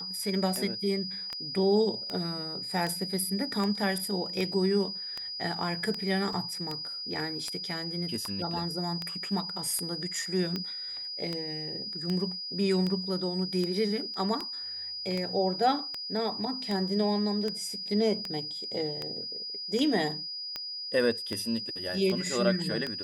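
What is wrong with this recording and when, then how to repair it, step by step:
scratch tick 78 rpm −19 dBFS
whistle 4,900 Hz −35 dBFS
0:06.33: drop-out 2.8 ms
0:14.14: drop-out 3.2 ms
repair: click removal
notch filter 4,900 Hz, Q 30
repair the gap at 0:06.33, 2.8 ms
repair the gap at 0:14.14, 3.2 ms

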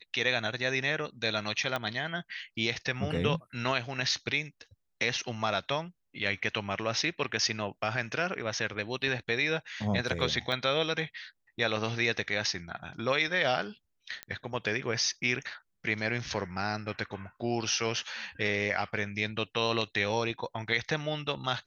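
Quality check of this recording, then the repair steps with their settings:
0:01.76: click −17 dBFS
0:10.52: drop-out 2.3 ms
0:14.23: click −20 dBFS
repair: click removal
repair the gap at 0:10.52, 2.3 ms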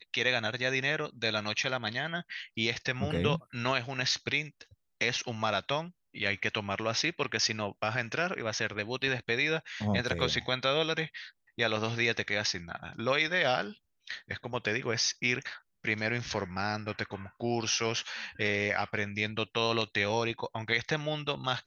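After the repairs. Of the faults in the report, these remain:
0:01.76: click

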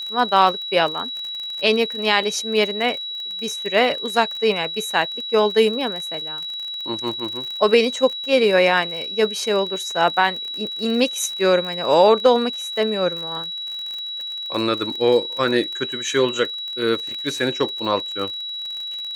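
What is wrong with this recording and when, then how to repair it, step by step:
surface crackle 34 per second −27 dBFS
whistle 3,900 Hz −27 dBFS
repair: click removal
notch filter 3,900 Hz, Q 30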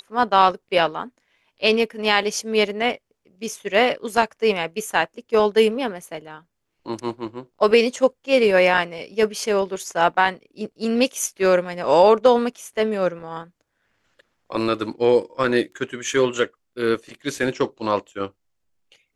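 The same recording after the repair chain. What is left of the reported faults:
none of them is left

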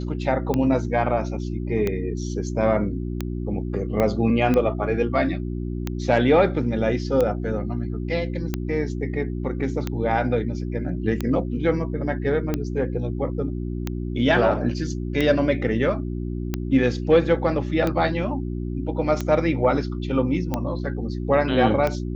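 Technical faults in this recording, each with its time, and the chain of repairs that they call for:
mains hum 60 Hz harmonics 6 −28 dBFS
scratch tick 45 rpm −11 dBFS
0:04.00: click −10 dBFS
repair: click removal
hum removal 60 Hz, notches 6

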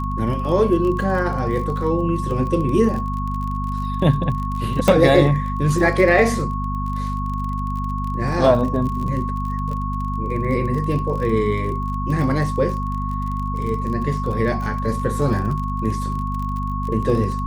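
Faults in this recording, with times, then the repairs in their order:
surface crackle 33 per second −27 dBFS
mains hum 50 Hz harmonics 5 −25 dBFS
whistle 1,100 Hz −27 dBFS
0:04.88: click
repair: click removal
notch filter 1,100 Hz, Q 30
hum removal 50 Hz, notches 5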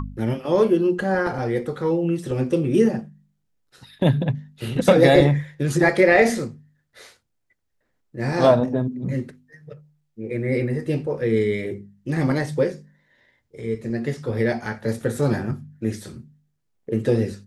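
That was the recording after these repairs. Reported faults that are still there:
0:04.88: click

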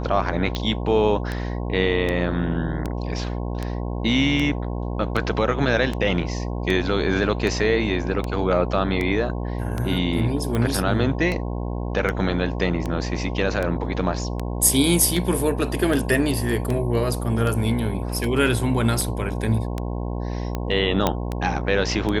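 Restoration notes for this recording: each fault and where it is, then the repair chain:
mains buzz 60 Hz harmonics 18 −27 dBFS
scratch tick 78 rpm −13 dBFS
0:21.07: click −5 dBFS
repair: click removal
hum removal 60 Hz, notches 18

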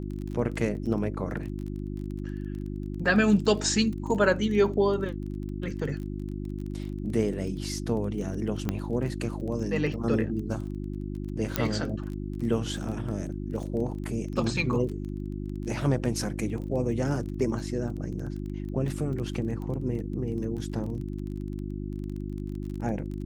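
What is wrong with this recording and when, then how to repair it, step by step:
surface crackle 21 per second −35 dBFS
mains hum 50 Hz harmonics 7 −34 dBFS
0:08.69: click −14 dBFS
0:11.56: click −8 dBFS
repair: click removal
hum removal 50 Hz, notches 7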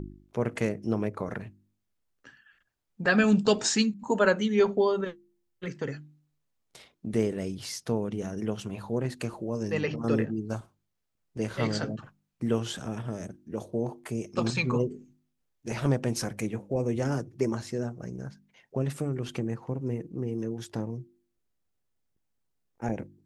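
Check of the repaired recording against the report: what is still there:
none of them is left

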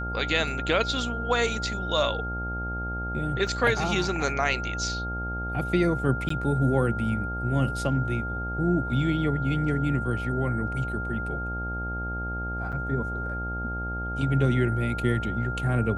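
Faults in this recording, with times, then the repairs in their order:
mains buzz 60 Hz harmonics 15 −33 dBFS
whistle 1,400 Hz −32 dBFS
0:03.47: drop-out 3.4 ms
0:06.29–0:06.30: drop-out 14 ms
0:12.72–0:12.73: drop-out 6.6 ms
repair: hum removal 60 Hz, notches 15
notch filter 1,400 Hz, Q 30
repair the gap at 0:03.47, 3.4 ms
repair the gap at 0:06.29, 14 ms
repair the gap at 0:12.72, 6.6 ms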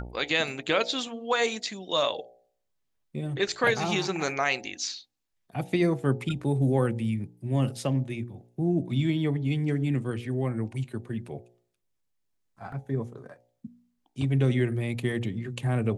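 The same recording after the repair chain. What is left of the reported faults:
none of them is left

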